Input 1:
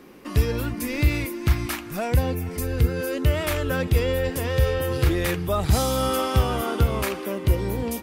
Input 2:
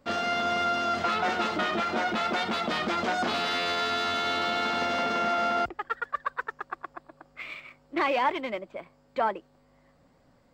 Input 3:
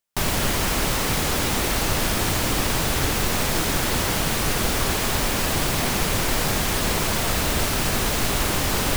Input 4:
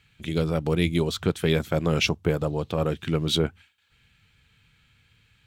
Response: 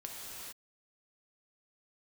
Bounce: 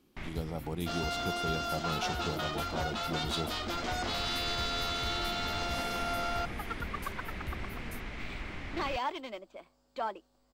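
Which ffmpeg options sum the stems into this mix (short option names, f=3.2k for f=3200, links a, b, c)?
-filter_complex "[0:a]acompressor=threshold=-19dB:ratio=6,volume=-16dB[a];[1:a]equalizer=f=140:w=0.61:g=-12,adelay=800,volume=1dB[b];[2:a]lowpass=f=2.1k:t=q:w=6.2,volume=-14.5dB[c];[3:a]equalizer=f=820:t=o:w=0.77:g=13.5,volume=-10dB,asplit=2[d][e];[e]apad=whole_len=395256[f];[c][f]sidechaincompress=threshold=-39dB:ratio=8:attack=22:release=409[g];[a][b][g][d]amix=inputs=4:normalize=0,equalizer=f=125:t=o:w=1:g=-5,equalizer=f=500:t=o:w=1:g=-7,equalizer=f=1k:t=o:w=1:g=-5,equalizer=f=2k:t=o:w=1:g=-12"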